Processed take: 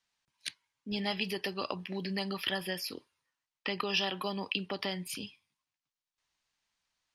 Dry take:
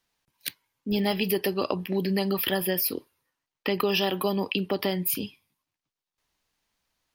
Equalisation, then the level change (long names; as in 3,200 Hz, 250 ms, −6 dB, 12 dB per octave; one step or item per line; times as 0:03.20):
low-pass filter 8,800 Hz 24 dB per octave
low-shelf EQ 130 Hz −9.5 dB
parametric band 390 Hz −8 dB 1.9 octaves
−3.0 dB